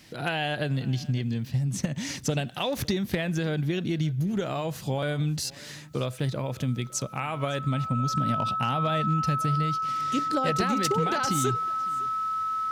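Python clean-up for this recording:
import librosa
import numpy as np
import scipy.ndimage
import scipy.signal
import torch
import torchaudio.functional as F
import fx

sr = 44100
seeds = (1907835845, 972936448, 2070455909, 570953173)

y = fx.fix_declip(x, sr, threshold_db=-17.5)
y = fx.notch(y, sr, hz=1300.0, q=30.0)
y = fx.fix_echo_inverse(y, sr, delay_ms=557, level_db=-22.5)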